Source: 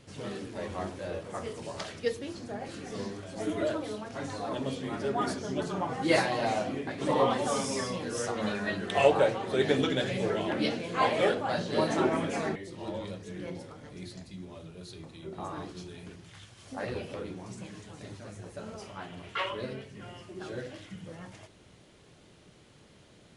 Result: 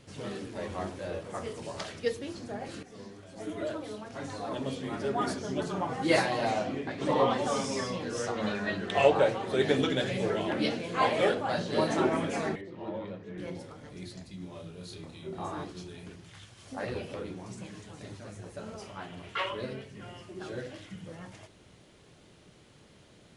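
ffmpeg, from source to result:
-filter_complex "[0:a]asettb=1/sr,asplit=3[s0][s1][s2];[s0]atrim=end=6.514[s3];[s1]atrim=start=6.51:end=9.26,asetpts=PTS-STARTPTS,afade=t=in:d=0.004:c=qsin,afade=t=out:st=2.746:d=0.004:c=qsin,lowpass=7300[s4];[s2]atrim=start=9.256[s5];[s3][s4]acrossfade=d=0.004:c1=hsin:c2=qsin[s6];[s6][s5]acrossfade=d=0.004:c1=qsin:c2=hsin,asettb=1/sr,asplit=3[s7][s8][s9];[s7]atrim=end=12.614[s10];[s8]atrim=start=12.61:end=13.38,asetpts=PTS-STARTPTS,afade=t=in:d=0.004:c=qsin,afade=t=out:st=0.766:d=0.004:c=qsin,highpass=120,lowpass=2200[s11];[s9]atrim=start=13.376[s12];[s10][s11]acrossfade=d=0.004:c1=hsin:c2=qsin[s13];[s13][s12]acrossfade=d=0.004:c1=qsin:c2=hsin,asettb=1/sr,asplit=3[s14][s15][s16];[s14]atrim=end=14.384[s17];[s15]atrim=start=14.38:end=15.64,asetpts=PTS-STARTPTS,afade=t=in:d=0.004:c=qsin,afade=t=out:st=1.256:d=0.004:c=qsin,asplit=2[s18][s19];[s19]adelay=29,volume=0.708[s20];[s18][s20]amix=inputs=2:normalize=0,atrim=end_sample=55566[s21];[s16]atrim=start=15.636[s22];[s17][s21]acrossfade=d=0.004:c1=hsin:c2=qsin[s23];[s23][s22]acrossfade=d=0.004:c1=qsin:c2=hsin,asplit=2[s24][s25];[s24]atrim=end=2.83,asetpts=PTS-STARTPTS,afade=t=out:st=2.826:d=0.004:c=hsin:silence=0.251189[s26];[s25]atrim=start=2.83,asetpts=PTS-STARTPTS,afade=t=in:d=2.7:c=qsin:silence=0.251189[s27];[s26][s27]concat=n=2:v=0:a=1"

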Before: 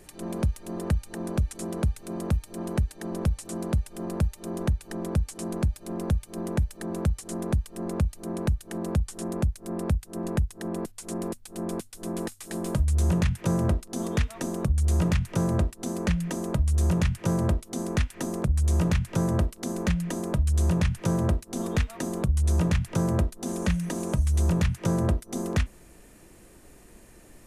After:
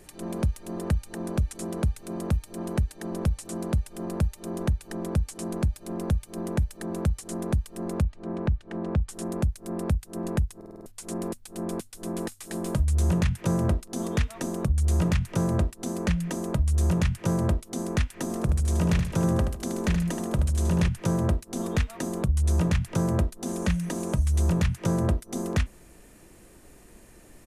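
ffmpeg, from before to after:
-filter_complex "[0:a]asettb=1/sr,asplit=3[s0][s1][s2];[s0]atrim=end=8.024[s3];[s1]atrim=start=8.02:end=9.09,asetpts=PTS-STARTPTS,afade=t=in:d=0.004:c=qsin,afade=t=out:st=1.066:d=0.004:c=qsin,lowpass=2900[s4];[s2]atrim=start=9.086[s5];[s3][s4]acrossfade=d=0.004:c1=hsin:c2=qsin[s6];[s6][s5]acrossfade=d=0.004:c1=qsin:c2=hsin,asplit=3[s7][s8][s9];[s7]afade=t=out:st=18.29:d=0.02[s10];[s8]aecho=1:1:76|152|228|304:0.422|0.143|0.0487|0.0166,afade=t=in:st=18.29:d=0.02,afade=t=out:st=20.87:d=0.02[s11];[s9]afade=t=in:st=20.87:d=0.02[s12];[s10][s11][s12]amix=inputs=3:normalize=0,asplit=7[s13][s14][s15][s16][s17][s18][s19];[s13]atrim=end=10.612[s20];[s14]atrim=start=10.558:end=10.612[s21];[s15]atrim=start=10.558:end=10.612[s22];[s16]atrim=start=10.558:end=10.612[s23];[s17]atrim=start=10.558:end=10.612[s24];[s18]atrim=start=10.558:end=10.612[s25];[s19]atrim=start=10.858[s26];[s20][s21]acrossfade=d=0.004:c1=hsin:c2=hsin[s27];[s27][s22]acrossfade=d=0.004:c1=hsin:c2=hsin[s28];[s28][s23]acrossfade=d=0.004:c1=hsin:c2=hsin[s29];[s29][s24]acrossfade=d=0.004:c1=hsin:c2=hsin[s30];[s30][s25]acrossfade=d=0.004:c1=hsin:c2=hsin[s31];[s31][s26]acrossfade=d=0.004:c1=hsin:c2=hsin"

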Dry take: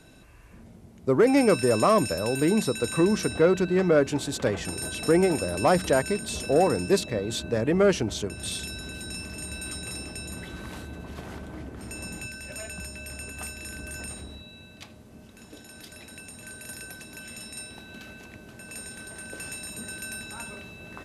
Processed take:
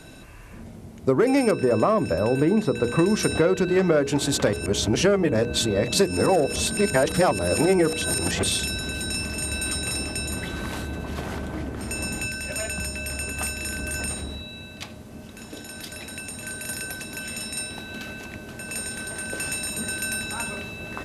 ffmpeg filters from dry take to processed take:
-filter_complex "[0:a]asettb=1/sr,asplit=3[s0][s1][s2];[s0]atrim=end=1.514[s3];[s1]atrim=start=1.51:end=2.99,asetpts=PTS-STARTPTS,afade=t=in:d=0.004:c=qsin,afade=t=out:st=1.476:d=0.004:c=qsin,lowpass=f=1300:p=1[s4];[s2]atrim=start=2.986[s5];[s3][s4]acrossfade=d=0.004:c1=hsin:c2=qsin[s6];[s6][s5]acrossfade=d=0.004:c1=qsin:c2=hsin,asplit=3[s7][s8][s9];[s7]atrim=end=4.532[s10];[s8]atrim=start=4.528:end=8.432,asetpts=PTS-STARTPTS,areverse[s11];[s9]atrim=start=8.428[s12];[s10][s11]acrossfade=d=0.004:c1=hsin:c2=hsin[s13];[s13][s12]acrossfade=d=0.004:c1=hsin:c2=hsin,bandreject=f=60:t=h:w=6,bandreject=f=120:t=h:w=6,bandreject=f=180:t=h:w=6,bandreject=f=240:t=h:w=6,bandreject=f=300:t=h:w=6,bandreject=f=360:t=h:w=6,bandreject=f=420:t=h:w=6,bandreject=f=480:t=h:w=6,acompressor=threshold=0.0562:ratio=6,volume=2.66"

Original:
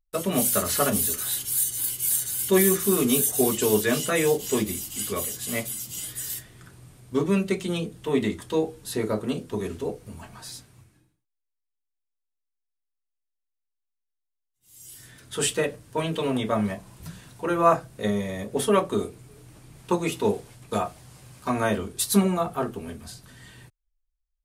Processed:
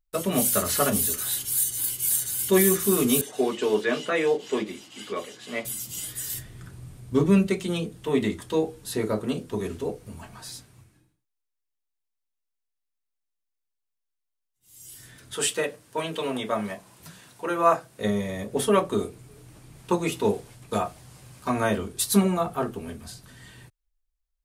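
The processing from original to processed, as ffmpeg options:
-filter_complex "[0:a]asettb=1/sr,asplit=3[s0][s1][s2];[s0]atrim=end=3.214[s3];[s1]atrim=start=3.21:end=5.65,asetpts=PTS-STARTPTS,afade=t=in:d=0.004:c=qsin,afade=t=out:st=2.436:d=0.004:c=qsin,highpass=280,lowpass=3400[s4];[s2]atrim=start=5.646[s5];[s3][s4]acrossfade=d=0.004:c1=hsin:c2=qsin[s6];[s6][s5]acrossfade=d=0.004:c1=qsin:c2=hsin,asettb=1/sr,asplit=3[s7][s8][s9];[s7]atrim=end=6.344[s10];[s8]atrim=start=6.34:end=7.47,asetpts=PTS-STARTPTS,afade=t=in:d=0.004:c=qsin,afade=t=out:st=1.126:d=0.004:c=qsin,lowshelf=f=190:g=9.5[s11];[s9]atrim=start=7.466[s12];[s10][s11]acrossfade=d=0.004:c1=hsin:c2=qsin[s13];[s13][s12]acrossfade=d=0.004:c1=qsin:c2=hsin,asettb=1/sr,asplit=3[s14][s15][s16];[s14]atrim=end=15.354[s17];[s15]atrim=start=15.35:end=18.01,asetpts=PTS-STARTPTS,afade=t=in:d=0.004:c=qsin,afade=t=out:st=2.656:d=0.004:c=qsin,highpass=f=380:p=1[s18];[s16]atrim=start=18.006[s19];[s17][s18]acrossfade=d=0.004:c1=hsin:c2=qsin[s20];[s20][s19]acrossfade=d=0.004:c1=qsin:c2=hsin"

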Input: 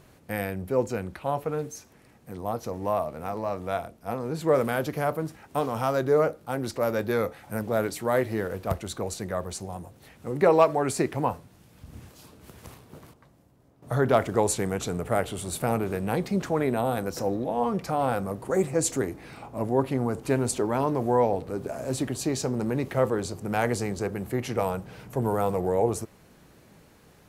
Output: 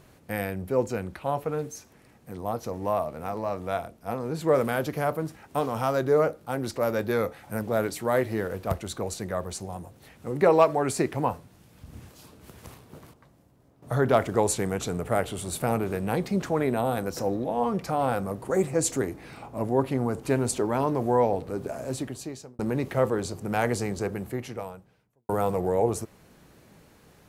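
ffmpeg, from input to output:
-filter_complex "[0:a]asplit=3[s0][s1][s2];[s0]atrim=end=22.59,asetpts=PTS-STARTPTS,afade=t=out:st=21.7:d=0.89[s3];[s1]atrim=start=22.59:end=25.29,asetpts=PTS-STARTPTS,afade=t=in:d=0.004:c=hsin,afade=t=out:st=1.55:d=1.15:c=qua[s4];[s2]atrim=start=25.29,asetpts=PTS-STARTPTS,afade=t=in:d=0.004:c=hsin[s5];[s3][s4][s5]concat=n=3:v=0:a=1"

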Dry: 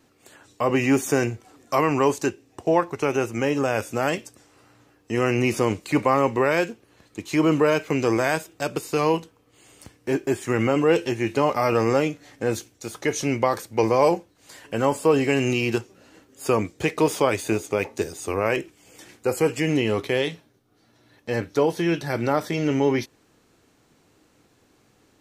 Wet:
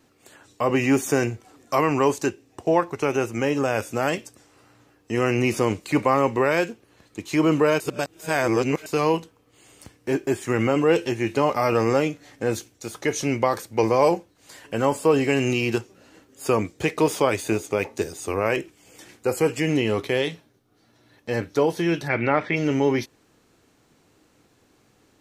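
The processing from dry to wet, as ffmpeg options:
-filter_complex "[0:a]asplit=3[s0][s1][s2];[s0]afade=t=out:st=22.07:d=0.02[s3];[s1]lowpass=f=2300:t=q:w=3.5,afade=t=in:st=22.07:d=0.02,afade=t=out:st=22.55:d=0.02[s4];[s2]afade=t=in:st=22.55:d=0.02[s5];[s3][s4][s5]amix=inputs=3:normalize=0,asplit=3[s6][s7][s8];[s6]atrim=end=7.802[s9];[s7]atrim=start=7.798:end=8.862,asetpts=PTS-STARTPTS,areverse[s10];[s8]atrim=start=8.858[s11];[s9][s10]acrossfade=d=0.004:c1=hsin:c2=hsin[s12];[s12][s11]acrossfade=d=0.004:c1=hsin:c2=hsin"

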